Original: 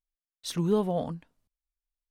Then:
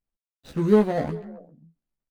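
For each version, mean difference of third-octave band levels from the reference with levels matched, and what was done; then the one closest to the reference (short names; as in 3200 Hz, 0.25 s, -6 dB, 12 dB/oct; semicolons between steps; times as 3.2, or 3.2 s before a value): 5.5 dB: median filter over 41 samples; doubler 14 ms -3.5 dB; on a send: delay with a stepping band-pass 0.133 s, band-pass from 3200 Hz, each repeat -1.4 oct, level -12 dB; on the sum: gain +5 dB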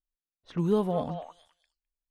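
3.5 dB: low-pass opened by the level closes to 390 Hz, open at -25 dBFS; on a send: delay with a stepping band-pass 0.208 s, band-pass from 930 Hz, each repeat 1.4 oct, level -4 dB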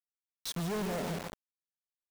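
14.5 dB: feedback echo 0.15 s, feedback 55%, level -11 dB; hard clip -31 dBFS, distortion -5 dB; bit-crush 6-bit; gain -2.5 dB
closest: second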